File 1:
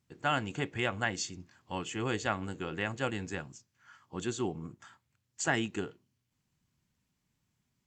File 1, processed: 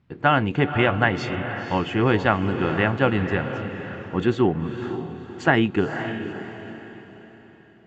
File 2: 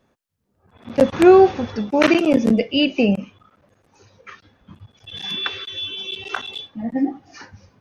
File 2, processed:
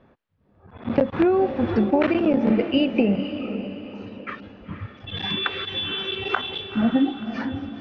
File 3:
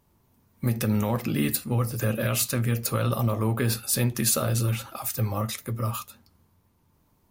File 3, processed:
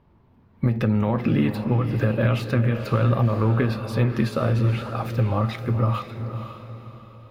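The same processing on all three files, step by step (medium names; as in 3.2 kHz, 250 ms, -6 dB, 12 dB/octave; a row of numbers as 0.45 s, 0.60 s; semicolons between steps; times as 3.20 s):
compression 16:1, threshold -24 dBFS; distance through air 370 m; on a send: echo that smears into a reverb 506 ms, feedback 41%, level -9 dB; on the sum: normalise loudness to -23 LUFS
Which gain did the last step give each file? +15.0 dB, +9.0 dB, +8.5 dB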